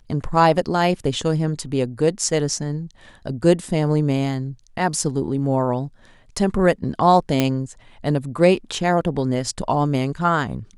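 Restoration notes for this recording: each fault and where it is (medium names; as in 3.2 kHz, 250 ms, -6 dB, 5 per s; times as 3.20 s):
7.40 s: pop -4 dBFS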